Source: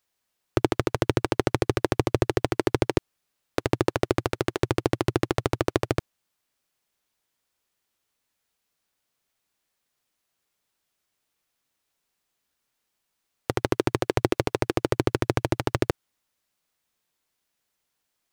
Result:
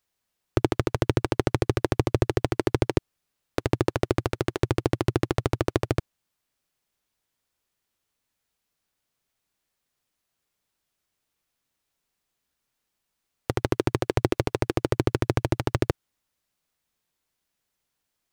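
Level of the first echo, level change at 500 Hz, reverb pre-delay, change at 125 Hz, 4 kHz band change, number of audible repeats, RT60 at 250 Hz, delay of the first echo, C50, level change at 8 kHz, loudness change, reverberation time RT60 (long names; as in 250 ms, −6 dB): no echo audible, −1.0 dB, no reverb audible, +2.5 dB, −2.0 dB, no echo audible, no reverb audible, no echo audible, no reverb audible, −2.0 dB, 0.0 dB, no reverb audible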